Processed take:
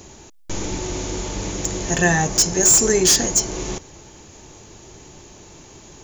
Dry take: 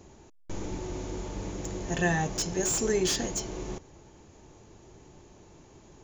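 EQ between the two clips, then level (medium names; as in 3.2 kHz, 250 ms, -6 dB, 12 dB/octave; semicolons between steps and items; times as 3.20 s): dynamic bell 3.2 kHz, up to -7 dB, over -48 dBFS, Q 1.2; treble shelf 2.1 kHz +10.5 dB; +8.0 dB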